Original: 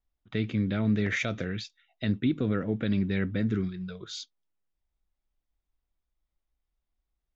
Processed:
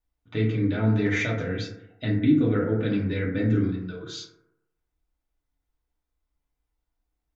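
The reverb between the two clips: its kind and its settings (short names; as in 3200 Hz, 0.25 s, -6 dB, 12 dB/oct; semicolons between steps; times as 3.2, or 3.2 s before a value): FDN reverb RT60 0.87 s, low-frequency decay 0.9×, high-frequency decay 0.3×, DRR -4.5 dB; gain -2 dB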